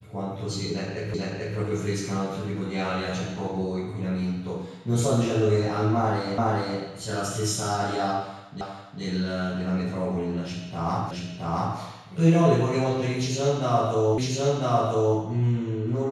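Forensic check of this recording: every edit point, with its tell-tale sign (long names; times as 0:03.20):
0:01.14: the same again, the last 0.44 s
0:06.38: the same again, the last 0.42 s
0:08.61: the same again, the last 0.41 s
0:11.11: the same again, the last 0.67 s
0:14.18: the same again, the last 1 s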